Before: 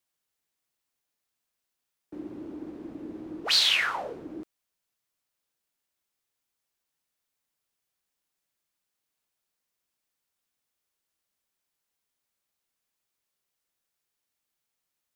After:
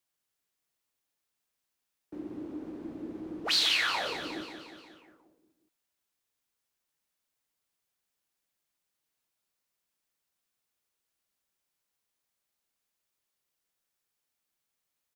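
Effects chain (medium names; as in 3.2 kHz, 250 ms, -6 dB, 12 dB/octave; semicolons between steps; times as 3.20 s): in parallel at -2 dB: peak limiter -21.5 dBFS, peak gain reduction 11 dB; on the sum: feedback delay 179 ms, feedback 59%, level -8.5 dB; trim -6.5 dB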